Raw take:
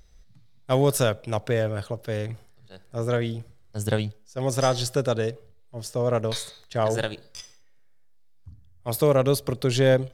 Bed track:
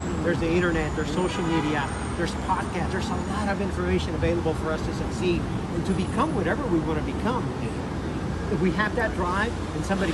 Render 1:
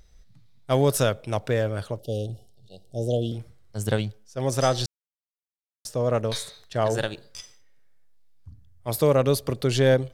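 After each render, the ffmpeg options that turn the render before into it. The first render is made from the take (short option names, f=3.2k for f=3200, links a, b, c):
-filter_complex "[0:a]asettb=1/sr,asplit=3[a][b][c];[a]atrim=end=1.994[d];[b]atrim=start=1.99:end=3.32,asetpts=PTS-STARTPTS,afade=t=in:d=0.004:c=qsin,afade=t=out:st=1.326:d=0.004:c=qsin,asuperstop=centerf=1500:order=20:qfactor=0.75[e];[c]atrim=start=3.316[f];[d][e]acrossfade=d=0.004:c1=hsin:c2=qsin[g];[g][f]acrossfade=d=0.004:c1=qsin:c2=hsin,asplit=3[h][i][j];[h]atrim=end=4.86,asetpts=PTS-STARTPTS,afade=t=out:st=4.856:d=0.004:c=hsin[k];[i]atrim=start=4.86:end=5.85,asetpts=PTS-STARTPTS,volume=0[l];[j]atrim=start=5.85,asetpts=PTS-STARTPTS,afade=t=in:d=0.004:c=hsin[m];[k][l][m]concat=n=3:v=0:a=1"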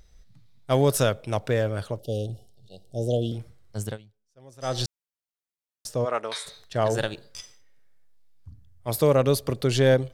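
-filter_complex "[0:a]asplit=3[a][b][c];[a]afade=t=out:st=6.04:d=0.02[d];[b]highpass=460,equalizer=f=520:t=q:w=4:g=-6,equalizer=f=900:t=q:w=4:g=3,equalizer=f=1.3k:t=q:w=4:g=5,equalizer=f=2.1k:t=q:w=4:g=4,equalizer=f=4.4k:t=q:w=4:g=-4,equalizer=f=6.5k:t=q:w=4:g=-7,lowpass=f=9.8k:w=0.5412,lowpass=f=9.8k:w=1.3066,afade=t=in:st=6.04:d=0.02,afade=t=out:st=6.45:d=0.02[e];[c]afade=t=in:st=6.45:d=0.02[f];[d][e][f]amix=inputs=3:normalize=0,asplit=3[g][h][i];[g]atrim=end=3.98,asetpts=PTS-STARTPTS,afade=t=out:st=3.78:d=0.2:silence=0.0668344[j];[h]atrim=start=3.98:end=4.6,asetpts=PTS-STARTPTS,volume=-23.5dB[k];[i]atrim=start=4.6,asetpts=PTS-STARTPTS,afade=t=in:d=0.2:silence=0.0668344[l];[j][k][l]concat=n=3:v=0:a=1"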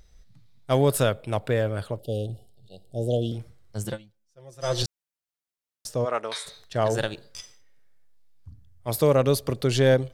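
-filter_complex "[0:a]asettb=1/sr,asplit=3[a][b][c];[a]atrim=end=0.784[d];[b]atrim=start=0.78:end=3.12,asetpts=PTS-STARTPTS,afade=t=in:d=0.004:c=qsin,afade=t=out:st=2.336:d=0.004:c=qsin,equalizer=f=5.9k:w=3.9:g=-11.5[e];[c]atrim=start=3.116[f];[d][e]acrossfade=d=0.004:c1=hsin:c2=qsin[g];[g][f]acrossfade=d=0.004:c1=qsin:c2=hsin,asettb=1/sr,asplit=3[h][i][j];[h]atrim=end=3.844[k];[i]atrim=start=3.84:end=4.83,asetpts=PTS-STARTPTS,afade=t=in:d=0.004:c=qsin,afade=t=out:st=0.986:d=0.004:c=qsin,aecho=1:1:5.8:0.84,atrim=end_sample=43659[l];[j]atrim=start=4.826[m];[k][l]acrossfade=d=0.004:c1=hsin:c2=qsin[n];[n][m]acrossfade=d=0.004:c1=qsin:c2=hsin"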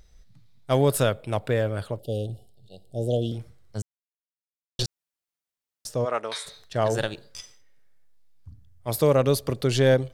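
-filter_complex "[0:a]asplit=3[a][b][c];[a]atrim=end=3.82,asetpts=PTS-STARTPTS,afade=t=out:st=3.816:d=0.004:c=hsin[d];[b]atrim=start=3.82:end=4.79,asetpts=PTS-STARTPTS,volume=0[e];[c]atrim=start=4.79,asetpts=PTS-STARTPTS,afade=t=in:d=0.004:c=hsin[f];[d][e][f]concat=n=3:v=0:a=1"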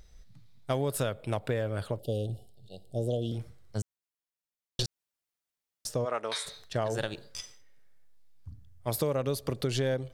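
-af "acompressor=threshold=-27dB:ratio=5"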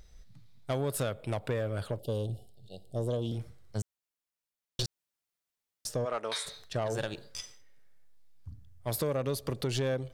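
-af "asoftclip=type=tanh:threshold=-23dB"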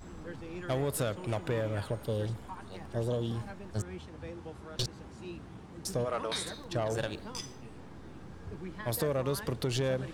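-filter_complex "[1:a]volume=-19.5dB[a];[0:a][a]amix=inputs=2:normalize=0"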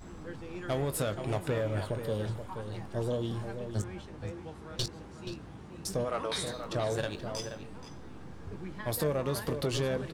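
-filter_complex "[0:a]asplit=2[a][b];[b]adelay=20,volume=-11dB[c];[a][c]amix=inputs=2:normalize=0,asplit=2[d][e];[e]adelay=478.1,volume=-8dB,highshelf=f=4k:g=-10.8[f];[d][f]amix=inputs=2:normalize=0"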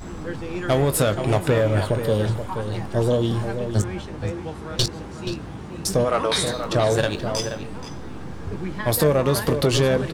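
-af "volume=12dB"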